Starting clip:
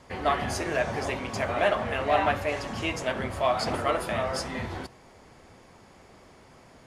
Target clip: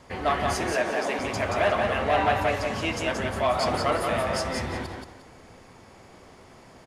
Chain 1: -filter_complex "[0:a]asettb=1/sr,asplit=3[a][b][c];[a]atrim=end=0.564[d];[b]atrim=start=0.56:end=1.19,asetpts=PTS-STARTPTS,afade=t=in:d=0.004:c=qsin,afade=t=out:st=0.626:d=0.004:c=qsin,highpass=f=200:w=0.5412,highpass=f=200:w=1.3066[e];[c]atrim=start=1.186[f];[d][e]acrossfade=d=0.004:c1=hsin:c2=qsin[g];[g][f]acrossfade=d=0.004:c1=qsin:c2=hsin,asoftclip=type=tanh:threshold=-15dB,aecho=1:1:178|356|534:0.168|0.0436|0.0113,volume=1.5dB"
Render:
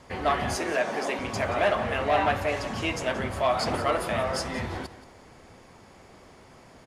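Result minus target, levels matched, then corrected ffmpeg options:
echo-to-direct -11.5 dB
-filter_complex "[0:a]asettb=1/sr,asplit=3[a][b][c];[a]atrim=end=0.564[d];[b]atrim=start=0.56:end=1.19,asetpts=PTS-STARTPTS,afade=t=in:d=0.004:c=qsin,afade=t=out:st=0.626:d=0.004:c=qsin,highpass=f=200:w=0.5412,highpass=f=200:w=1.3066[e];[c]atrim=start=1.186[f];[d][e]acrossfade=d=0.004:c1=hsin:c2=qsin[g];[g][f]acrossfade=d=0.004:c1=qsin:c2=hsin,asoftclip=type=tanh:threshold=-15dB,aecho=1:1:178|356|534|712:0.631|0.164|0.0427|0.0111,volume=1.5dB"

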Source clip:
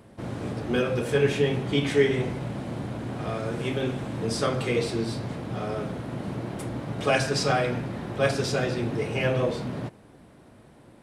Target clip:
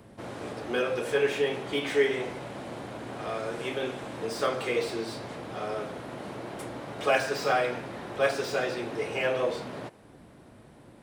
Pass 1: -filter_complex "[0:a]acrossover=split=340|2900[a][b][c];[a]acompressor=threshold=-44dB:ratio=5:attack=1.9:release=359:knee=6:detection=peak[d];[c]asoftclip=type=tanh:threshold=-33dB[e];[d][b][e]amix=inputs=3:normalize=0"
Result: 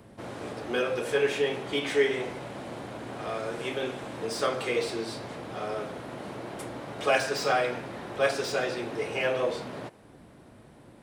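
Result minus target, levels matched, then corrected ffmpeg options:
soft clip: distortion -4 dB
-filter_complex "[0:a]acrossover=split=340|2900[a][b][c];[a]acompressor=threshold=-44dB:ratio=5:attack=1.9:release=359:knee=6:detection=peak[d];[c]asoftclip=type=tanh:threshold=-39.5dB[e];[d][b][e]amix=inputs=3:normalize=0"

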